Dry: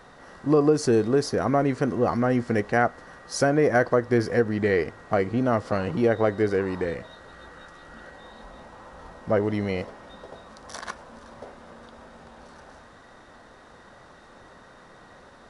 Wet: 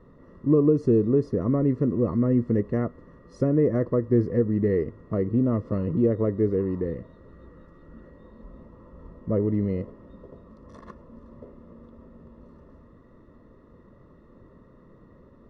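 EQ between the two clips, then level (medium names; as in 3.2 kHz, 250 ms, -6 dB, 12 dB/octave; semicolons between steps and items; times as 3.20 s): boxcar filter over 57 samples; +4.0 dB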